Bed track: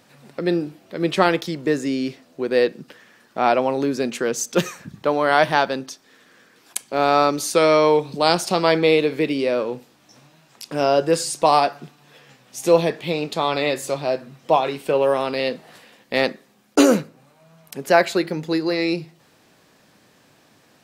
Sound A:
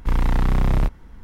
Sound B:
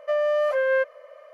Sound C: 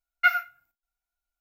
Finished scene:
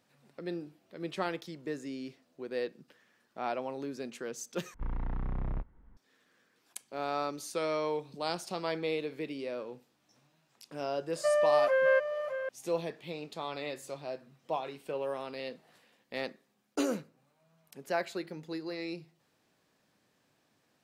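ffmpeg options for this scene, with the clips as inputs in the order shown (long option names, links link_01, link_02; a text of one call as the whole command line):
ffmpeg -i bed.wav -i cue0.wav -i cue1.wav -filter_complex "[0:a]volume=-17dB[link_01];[1:a]lowpass=1700[link_02];[2:a]aecho=1:1:610:0.335[link_03];[link_01]asplit=2[link_04][link_05];[link_04]atrim=end=4.744[link_06];[link_02]atrim=end=1.23,asetpts=PTS-STARTPTS,volume=-16dB[link_07];[link_05]atrim=start=5.966[link_08];[link_03]atrim=end=1.33,asetpts=PTS-STARTPTS,volume=-3.5dB,afade=type=in:duration=0.004:curve=hsin,afade=type=out:start_time=1.326:duration=0.004:curve=hsin,adelay=11160[link_09];[link_06][link_07]acrossfade=duration=0.004:curve1=hsin:curve2=hsin[link_10];[link_10][link_08]acrossfade=duration=0.004:curve1=hsin:curve2=hsin[link_11];[link_11][link_09]amix=inputs=2:normalize=0" out.wav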